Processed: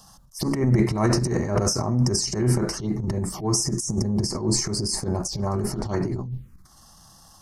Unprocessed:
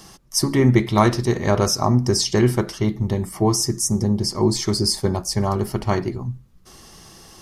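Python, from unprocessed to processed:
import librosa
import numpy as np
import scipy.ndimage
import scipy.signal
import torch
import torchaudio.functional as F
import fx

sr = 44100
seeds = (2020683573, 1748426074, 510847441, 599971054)

y = fx.transient(x, sr, attack_db=-12, sustain_db=11)
y = fx.env_phaser(y, sr, low_hz=340.0, high_hz=3400.0, full_db=-18.0)
y = y * 10.0 ** (-4.0 / 20.0)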